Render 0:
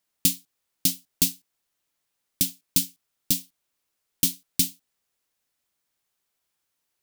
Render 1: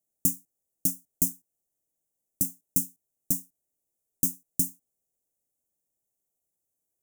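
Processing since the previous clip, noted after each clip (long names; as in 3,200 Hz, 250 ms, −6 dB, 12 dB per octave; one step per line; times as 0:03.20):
inverse Chebyshev band-stop filter 1,200–4,200 Hz, stop band 40 dB
level −2.5 dB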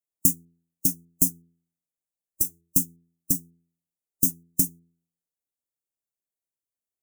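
noise reduction from a noise print of the clip's start 16 dB
hum removal 84.37 Hz, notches 5
level +5 dB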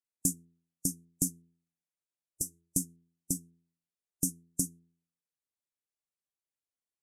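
low-pass filter 11,000 Hz 24 dB per octave
level −5 dB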